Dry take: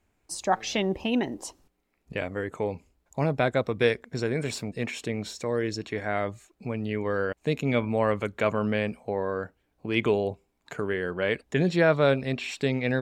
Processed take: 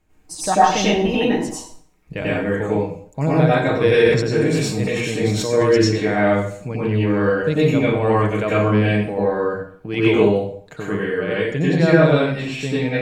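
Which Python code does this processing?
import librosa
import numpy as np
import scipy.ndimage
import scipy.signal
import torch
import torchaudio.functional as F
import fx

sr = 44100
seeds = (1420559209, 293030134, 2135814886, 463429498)

y = fx.low_shelf(x, sr, hz=260.0, db=6.5)
y = y + 0.42 * np.pad(y, (int(6.4 * sr / 1000.0), 0))[:len(y)]
y = fx.rider(y, sr, range_db=5, speed_s=2.0)
y = fx.rev_plate(y, sr, seeds[0], rt60_s=0.55, hf_ratio=0.85, predelay_ms=80, drr_db=-7.5)
y = fx.sustainer(y, sr, db_per_s=49.0, at=(3.66, 5.96))
y = y * librosa.db_to_amplitude(-2.0)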